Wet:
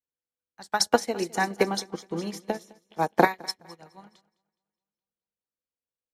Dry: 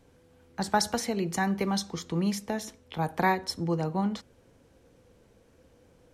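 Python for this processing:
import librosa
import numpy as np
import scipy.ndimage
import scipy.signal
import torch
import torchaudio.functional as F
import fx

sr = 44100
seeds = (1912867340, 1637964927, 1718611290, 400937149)

y = fx.peak_eq(x, sr, hz=380.0, db=12.5, octaves=2.3, at=(0.86, 3.25))
y = fx.hpss(y, sr, part='harmonic', gain_db=-4)
y = fx.tilt_shelf(y, sr, db=-6.0, hz=660.0)
y = fx.echo_feedback(y, sr, ms=209, feedback_pct=60, wet_db=-10.5)
y = fx.upward_expand(y, sr, threshold_db=-47.0, expansion=2.5)
y = y * 10.0 ** (4.0 / 20.0)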